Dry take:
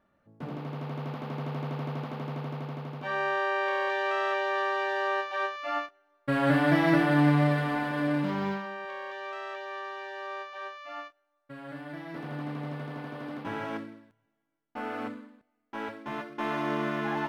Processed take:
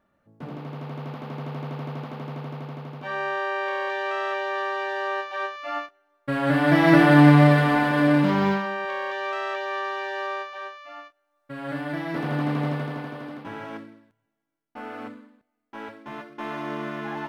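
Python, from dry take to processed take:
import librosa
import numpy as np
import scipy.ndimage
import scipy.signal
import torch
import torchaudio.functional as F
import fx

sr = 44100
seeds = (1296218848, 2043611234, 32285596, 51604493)

y = fx.gain(x, sr, db=fx.line((6.44, 1.0), (7.04, 9.0), (10.21, 9.0), (11.02, -2.0), (11.7, 10.5), (12.66, 10.5), (13.49, -1.5)))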